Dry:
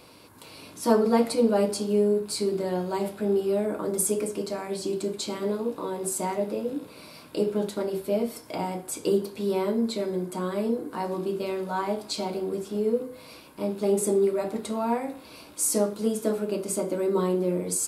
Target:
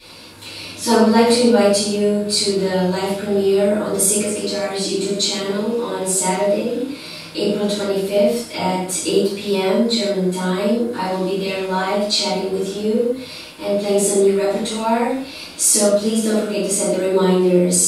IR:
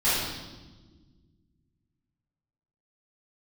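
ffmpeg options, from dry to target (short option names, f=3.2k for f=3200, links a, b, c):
-filter_complex "[0:a]equalizer=f=3.7k:w=0.5:g=10.5[a];[1:a]atrim=start_sample=2205,afade=t=out:st=0.4:d=0.01,atrim=end_sample=18081,asetrate=88200,aresample=44100[b];[a][b]afir=irnorm=-1:irlink=0,volume=-2dB"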